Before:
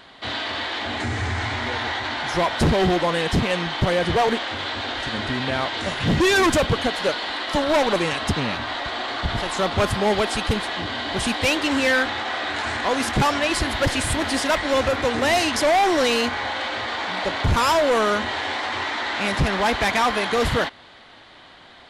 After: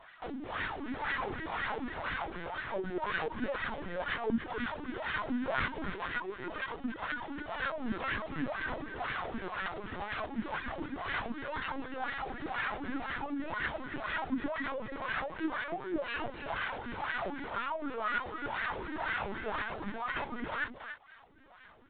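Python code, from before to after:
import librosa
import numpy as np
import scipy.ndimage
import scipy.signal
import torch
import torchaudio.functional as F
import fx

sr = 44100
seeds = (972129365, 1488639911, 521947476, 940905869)

y = fx.envelope_flatten(x, sr, power=0.3)
y = fx.dereverb_blind(y, sr, rt60_s=0.77)
y = fx.over_compress(y, sr, threshold_db=-25.0, ratio=-1.0)
y = fx.wah_lfo(y, sr, hz=2.0, low_hz=220.0, high_hz=1700.0, q=3.2)
y = y + 10.0 ** (-9.0 / 20.0) * np.pad(y, (int(284 * sr / 1000.0), 0))[:len(y)]
y = fx.lpc_vocoder(y, sr, seeds[0], excitation='pitch_kept', order=16)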